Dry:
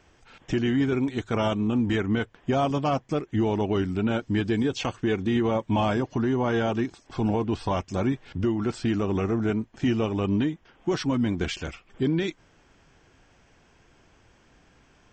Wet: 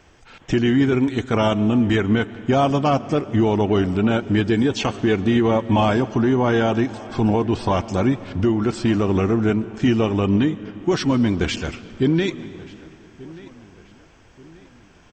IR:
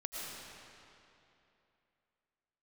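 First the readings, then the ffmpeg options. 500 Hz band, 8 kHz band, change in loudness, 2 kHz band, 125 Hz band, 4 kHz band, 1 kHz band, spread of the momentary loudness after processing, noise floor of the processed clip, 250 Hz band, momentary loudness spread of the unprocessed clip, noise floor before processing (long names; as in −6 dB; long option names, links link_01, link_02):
+6.5 dB, +6.5 dB, +6.5 dB, +6.5 dB, +6.5 dB, +6.5 dB, +6.5 dB, 5 LU, −50 dBFS, +6.5 dB, 5 LU, −60 dBFS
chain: -filter_complex "[0:a]asplit=2[link_01][link_02];[link_02]adelay=1184,lowpass=frequency=3700:poles=1,volume=-20.5dB,asplit=2[link_03][link_04];[link_04]adelay=1184,lowpass=frequency=3700:poles=1,volume=0.43,asplit=2[link_05][link_06];[link_06]adelay=1184,lowpass=frequency=3700:poles=1,volume=0.43[link_07];[link_01][link_03][link_05][link_07]amix=inputs=4:normalize=0,asplit=2[link_08][link_09];[1:a]atrim=start_sample=2205[link_10];[link_09][link_10]afir=irnorm=-1:irlink=0,volume=-15.5dB[link_11];[link_08][link_11]amix=inputs=2:normalize=0,volume=5.5dB"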